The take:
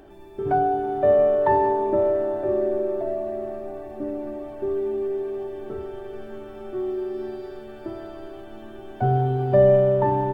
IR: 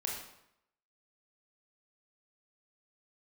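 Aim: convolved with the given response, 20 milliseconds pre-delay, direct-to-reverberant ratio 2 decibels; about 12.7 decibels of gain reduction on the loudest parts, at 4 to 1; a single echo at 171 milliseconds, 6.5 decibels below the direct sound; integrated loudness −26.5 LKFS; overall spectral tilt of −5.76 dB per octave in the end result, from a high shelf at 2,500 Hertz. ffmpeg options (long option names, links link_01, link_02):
-filter_complex "[0:a]highshelf=frequency=2500:gain=-8.5,acompressor=threshold=-28dB:ratio=4,aecho=1:1:171:0.473,asplit=2[link_01][link_02];[1:a]atrim=start_sample=2205,adelay=20[link_03];[link_02][link_03]afir=irnorm=-1:irlink=0,volume=-4.5dB[link_04];[link_01][link_04]amix=inputs=2:normalize=0"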